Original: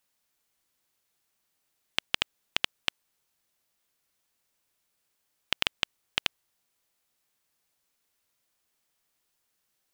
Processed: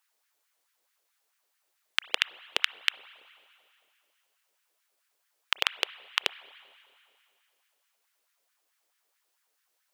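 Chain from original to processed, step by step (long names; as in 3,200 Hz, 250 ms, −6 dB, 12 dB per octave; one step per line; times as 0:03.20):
spring reverb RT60 2.5 s, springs 30/55 ms, chirp 50 ms, DRR 16.5 dB
auto-filter high-pass sine 4.6 Hz 410–1,700 Hz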